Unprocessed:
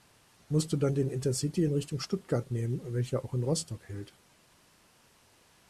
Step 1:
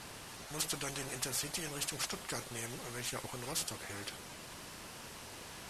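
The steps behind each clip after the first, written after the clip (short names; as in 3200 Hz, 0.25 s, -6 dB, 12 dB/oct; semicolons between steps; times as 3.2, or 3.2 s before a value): spectral compressor 4:1; gain -4.5 dB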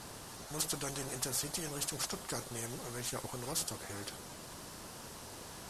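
bell 2400 Hz -7.5 dB 1.2 oct; gain +2 dB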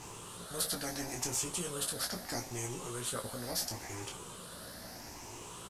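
moving spectral ripple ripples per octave 0.7, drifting +0.75 Hz, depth 9 dB; on a send: early reflections 17 ms -5 dB, 28 ms -7.5 dB; on the sum: gain -1.5 dB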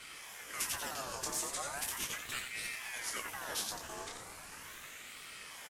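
wow and flutter 140 cents; echo 88 ms -7 dB; ring modulator with a swept carrier 1500 Hz, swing 50%, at 0.38 Hz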